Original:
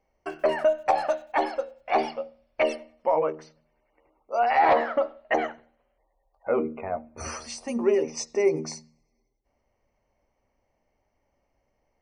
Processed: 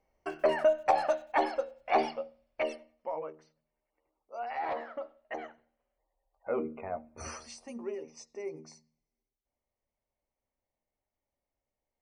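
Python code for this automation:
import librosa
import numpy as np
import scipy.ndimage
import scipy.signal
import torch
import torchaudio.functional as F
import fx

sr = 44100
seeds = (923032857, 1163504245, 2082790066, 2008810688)

y = fx.gain(x, sr, db=fx.line((2.04, -3.0), (3.3, -15.0), (5.37, -15.0), (6.7, -6.5), (7.28, -6.5), (7.98, -17.0)))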